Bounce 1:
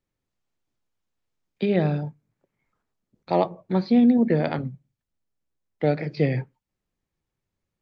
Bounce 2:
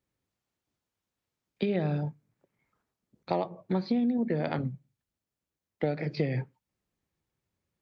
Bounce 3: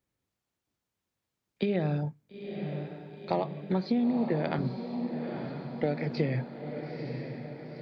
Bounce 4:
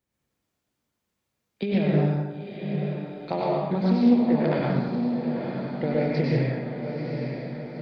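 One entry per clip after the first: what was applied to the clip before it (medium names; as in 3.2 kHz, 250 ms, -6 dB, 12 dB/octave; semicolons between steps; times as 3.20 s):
high-pass 51 Hz; compression 6:1, threshold -25 dBFS, peak gain reduction 11 dB
echo that smears into a reverb 930 ms, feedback 58%, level -7 dB
plate-style reverb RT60 1.2 s, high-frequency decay 0.7×, pre-delay 85 ms, DRR -4.5 dB; loudspeaker Doppler distortion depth 0.15 ms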